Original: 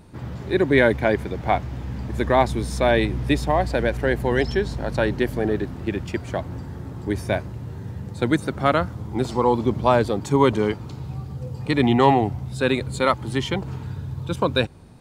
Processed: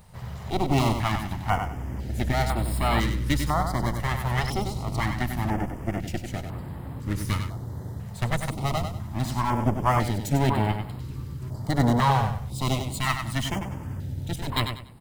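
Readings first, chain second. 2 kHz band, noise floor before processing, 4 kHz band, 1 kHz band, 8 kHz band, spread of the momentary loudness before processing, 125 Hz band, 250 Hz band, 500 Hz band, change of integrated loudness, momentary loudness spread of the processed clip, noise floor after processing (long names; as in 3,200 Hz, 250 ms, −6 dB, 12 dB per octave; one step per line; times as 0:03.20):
−6.0 dB, −36 dBFS, −2.0 dB, −3.0 dB, +3.0 dB, 14 LU, +0.5 dB, −5.5 dB, −11.5 dB, −5.0 dB, 12 LU, −38 dBFS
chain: lower of the sound and its delayed copy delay 1 ms
high-shelf EQ 9,200 Hz +10.5 dB
on a send: repeating echo 96 ms, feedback 27%, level −7 dB
on the sum: notch on a step sequencer 2 Hz 300–6,100 Hz
level −2 dB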